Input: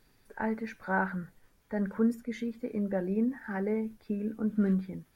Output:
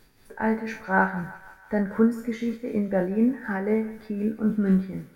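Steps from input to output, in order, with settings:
peak hold with a decay on every bin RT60 0.34 s
amplitude tremolo 4 Hz, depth 54%
feedback echo with a high-pass in the loop 165 ms, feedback 66%, high-pass 670 Hz, level −15 dB
level +8 dB

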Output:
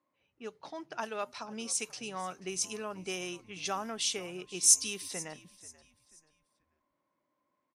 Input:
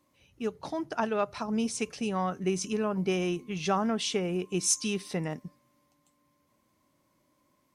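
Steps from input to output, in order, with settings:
RIAA equalisation recording
low-pass that shuts in the quiet parts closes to 1,500 Hz, open at −25.5 dBFS
echo with shifted repeats 485 ms, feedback 34%, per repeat −79 Hz, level −19.5 dB
level −6.5 dB

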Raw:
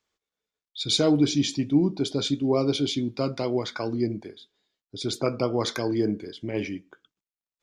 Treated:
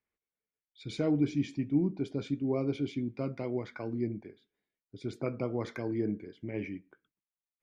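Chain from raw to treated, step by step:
drawn EQ curve 200 Hz 0 dB, 1,200 Hz −7 dB, 2,200 Hz 0 dB, 3,600 Hz −17 dB
level −5.5 dB

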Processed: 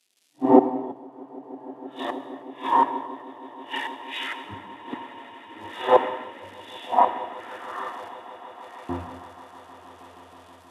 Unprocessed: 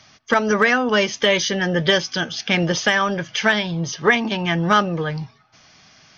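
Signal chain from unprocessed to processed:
random phases in long frames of 200 ms
high shelf with overshoot 1,800 Hz −8.5 dB, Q 1.5
automatic gain control gain up to 12 dB
surface crackle 550 per second −35 dBFS
gate with flip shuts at −7 dBFS, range −28 dB
auto-filter high-pass saw up 0.39 Hz 390–3,700 Hz
echo that builds up and dies away 92 ms, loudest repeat 8, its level −15 dB
reverb whose tail is shaped and stops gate 220 ms flat, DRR 8 dB
wrong playback speed 78 rpm record played at 45 rpm
multiband upward and downward expander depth 100%
level −8 dB

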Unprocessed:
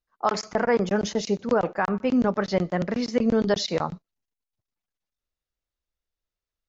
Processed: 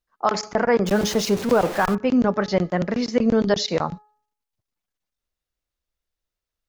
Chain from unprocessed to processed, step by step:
0:00.86–0:01.95: converter with a step at zero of −29.5 dBFS
hum removal 421.9 Hz, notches 4
level +3 dB

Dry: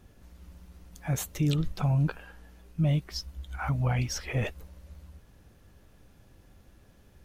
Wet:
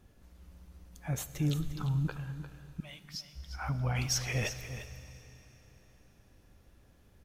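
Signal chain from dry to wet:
0:01.53–0:02.05: phaser with its sweep stopped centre 2,300 Hz, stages 6
0:02.80–0:03.35: high-pass filter 1,400 Hz 12 dB per octave
0:03.95–0:04.87: high-shelf EQ 2,000 Hz +10 dB
single-tap delay 350 ms −11.5 dB
four-comb reverb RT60 3.6 s, combs from 27 ms, DRR 12.5 dB
level −5 dB

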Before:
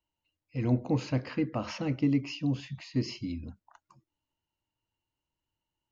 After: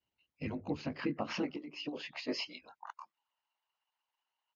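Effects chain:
every overlapping window played backwards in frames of 55 ms
high-pass filter sweep 82 Hz → 880 Hz, 0:00.50–0:03.52
tempo change 1.3×
downward compressor 10 to 1, threshold −35 dBFS, peak gain reduction 17 dB
tilt shelving filter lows −3.5 dB, about 1,200 Hz
mains-hum notches 50/100/150 Hz
harmonic and percussive parts rebalanced harmonic −17 dB
high-frequency loss of the air 160 metres
level +11 dB

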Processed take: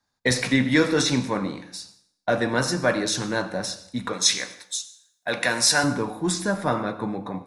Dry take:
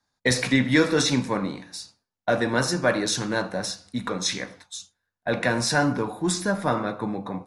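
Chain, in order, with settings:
0:04.13–0:05.84: spectral tilt +3 dB per octave
dense smooth reverb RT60 0.67 s, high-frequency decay 0.9×, pre-delay 75 ms, DRR 16 dB

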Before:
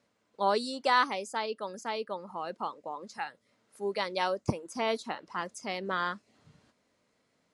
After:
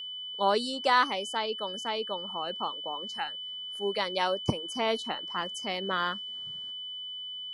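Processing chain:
steady tone 3,000 Hz −38 dBFS
level +1.5 dB

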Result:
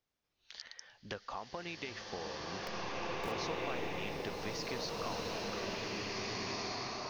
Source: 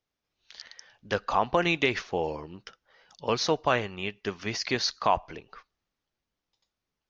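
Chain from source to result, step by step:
0:02.61–0:03.32: hold until the input has moved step −32 dBFS
downward compressor 6 to 1, threshold −39 dBFS, peak gain reduction 20 dB
slow-attack reverb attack 2,000 ms, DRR −6 dB
level −2 dB

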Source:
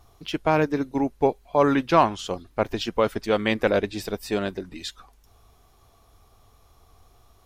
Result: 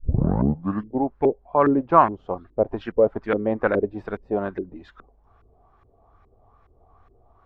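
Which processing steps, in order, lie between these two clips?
turntable start at the beginning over 1.03 s
auto-filter low-pass saw up 2.4 Hz 340–1,900 Hz
level −1.5 dB

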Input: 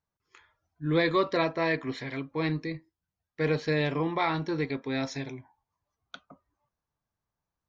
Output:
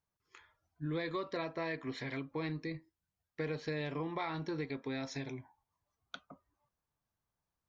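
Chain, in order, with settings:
downward compressor 4 to 1, threshold −34 dBFS, peak gain reduction 12.5 dB
level −2 dB

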